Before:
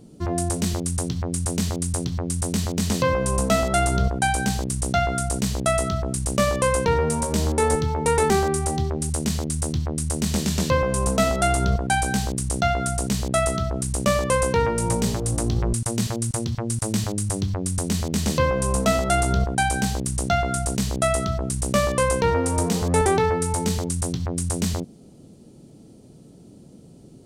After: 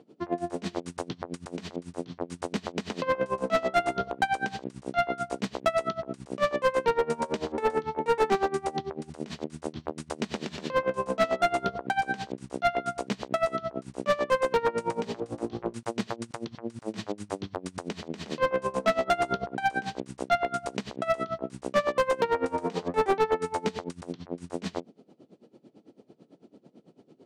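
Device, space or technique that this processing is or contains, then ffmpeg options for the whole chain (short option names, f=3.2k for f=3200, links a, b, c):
helicopter radio: -af "highpass=310,lowpass=2.9k,aeval=exprs='val(0)*pow(10,-21*(0.5-0.5*cos(2*PI*9*n/s))/20)':c=same,asoftclip=type=hard:threshold=-20dB,volume=3dB"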